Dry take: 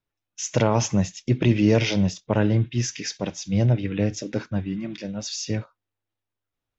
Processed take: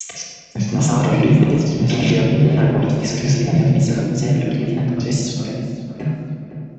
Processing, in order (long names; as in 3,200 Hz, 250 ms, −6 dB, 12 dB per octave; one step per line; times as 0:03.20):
slices reordered back to front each 111 ms, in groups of 5
in parallel at +2.5 dB: brickwall limiter −15.5 dBFS, peak gain reduction 8 dB
on the sum: frequency shifter +31 Hz
tape wow and flutter 150 cents
on a send: feedback echo with a low-pass in the loop 507 ms, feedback 57%, low-pass 1,600 Hz, level −11 dB
on the sum: rectangular room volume 2,200 cubic metres, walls mixed, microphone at 3.6 metres
level −7.5 dB